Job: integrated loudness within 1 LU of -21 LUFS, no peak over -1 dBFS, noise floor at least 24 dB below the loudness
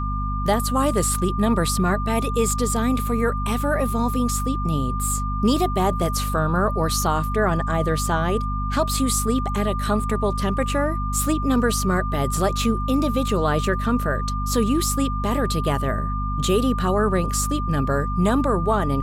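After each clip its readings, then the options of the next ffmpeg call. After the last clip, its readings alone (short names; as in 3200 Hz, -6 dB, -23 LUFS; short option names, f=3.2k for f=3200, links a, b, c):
hum 50 Hz; harmonics up to 250 Hz; hum level -23 dBFS; steady tone 1200 Hz; tone level -28 dBFS; loudness -22.0 LUFS; peak -8.0 dBFS; loudness target -21.0 LUFS
-> -af "bandreject=f=50:t=h:w=4,bandreject=f=100:t=h:w=4,bandreject=f=150:t=h:w=4,bandreject=f=200:t=h:w=4,bandreject=f=250:t=h:w=4"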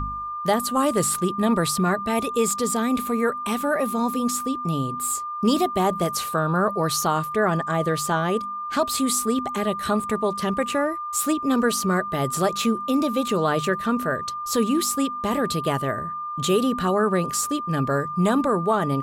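hum none; steady tone 1200 Hz; tone level -28 dBFS
-> -af "bandreject=f=1.2k:w=30"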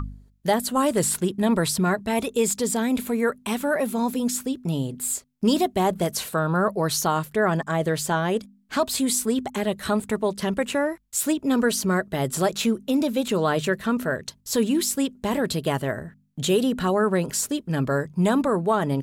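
steady tone none; loudness -24.0 LUFS; peak -9.5 dBFS; loudness target -21.0 LUFS
-> -af "volume=3dB"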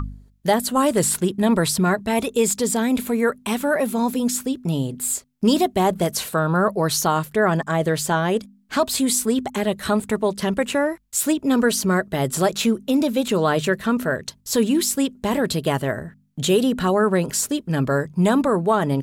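loudness -21.0 LUFS; peak -6.5 dBFS; noise floor -55 dBFS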